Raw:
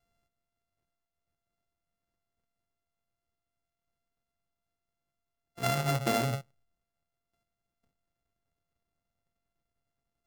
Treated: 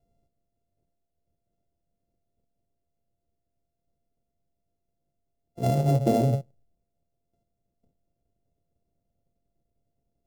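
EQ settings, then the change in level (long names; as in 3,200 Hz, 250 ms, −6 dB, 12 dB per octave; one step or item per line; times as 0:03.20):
drawn EQ curve 590 Hz 0 dB, 1,300 Hz −23 dB, 5,900 Hz −14 dB
+9.0 dB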